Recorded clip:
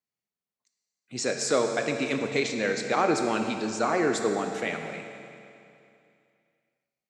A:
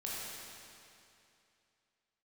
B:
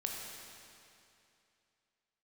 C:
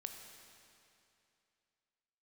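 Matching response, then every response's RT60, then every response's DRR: C; 2.7 s, 2.7 s, 2.7 s; -6.5 dB, -0.5 dB, 4.5 dB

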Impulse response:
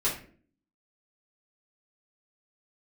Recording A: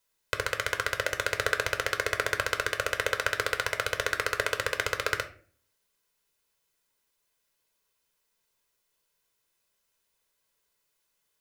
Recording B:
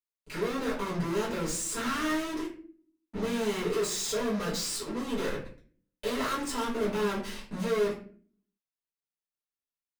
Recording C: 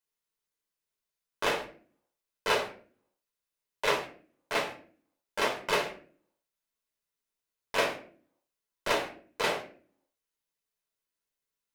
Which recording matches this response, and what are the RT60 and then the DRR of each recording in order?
B; 0.45 s, 0.45 s, 0.45 s; 6.0 dB, -8.0 dB, 0.5 dB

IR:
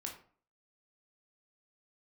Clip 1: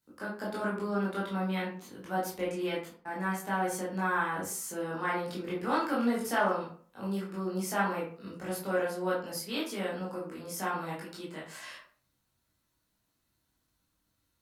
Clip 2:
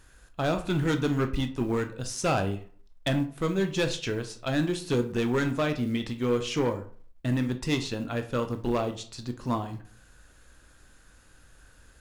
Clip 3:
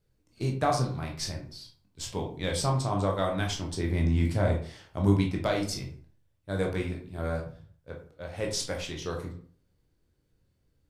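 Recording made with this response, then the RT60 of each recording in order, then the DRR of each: 3; 0.45 s, 0.45 s, 0.45 s; -7.5 dB, 6.5 dB, 0.5 dB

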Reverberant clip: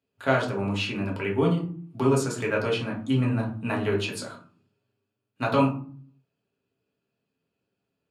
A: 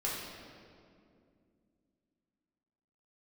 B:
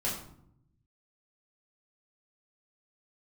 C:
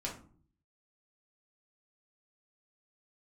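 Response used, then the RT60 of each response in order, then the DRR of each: C; 2.4 s, 0.70 s, 0.50 s; -6.0 dB, -7.5 dB, -3.5 dB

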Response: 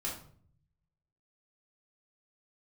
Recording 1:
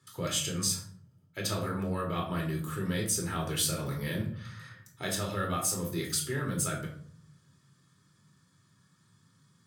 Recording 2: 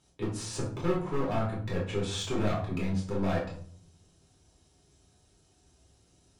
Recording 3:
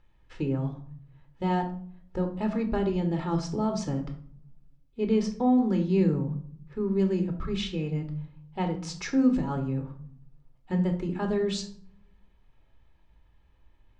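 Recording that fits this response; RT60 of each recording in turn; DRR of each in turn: 2; 0.55 s, 0.55 s, 0.55 s; -1.0 dB, -5.5 dB, 4.0 dB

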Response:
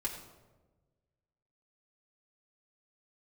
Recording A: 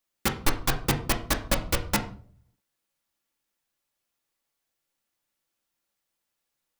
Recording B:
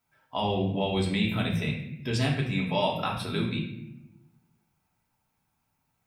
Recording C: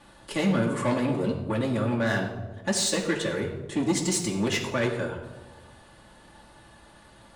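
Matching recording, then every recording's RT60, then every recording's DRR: C; 0.50 s, 0.80 s, 1.2 s; 2.5 dB, -2.5 dB, -4.5 dB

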